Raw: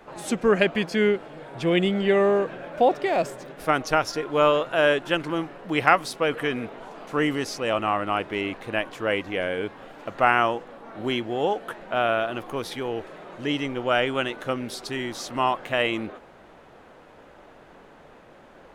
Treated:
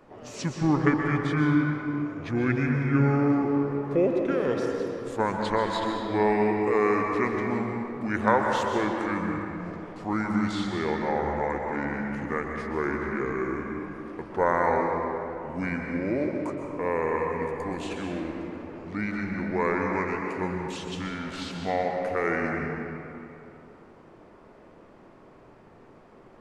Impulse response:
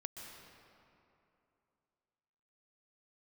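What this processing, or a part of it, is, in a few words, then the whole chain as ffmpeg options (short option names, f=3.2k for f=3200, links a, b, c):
slowed and reverbed: -filter_complex "[0:a]asetrate=31311,aresample=44100[a];[1:a]atrim=start_sample=2205[b];[a][b]afir=irnorm=-1:irlink=0"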